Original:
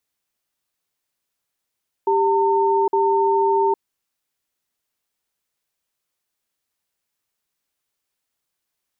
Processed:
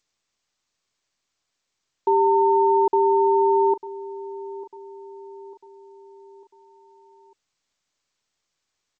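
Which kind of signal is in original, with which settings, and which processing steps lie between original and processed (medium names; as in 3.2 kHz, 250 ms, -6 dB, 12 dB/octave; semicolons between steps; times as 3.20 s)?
cadence 394 Hz, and 907 Hz, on 0.81 s, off 0.05 s, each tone -17.5 dBFS 1.68 s
feedback delay 898 ms, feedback 48%, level -16 dB; G.722 64 kbps 16 kHz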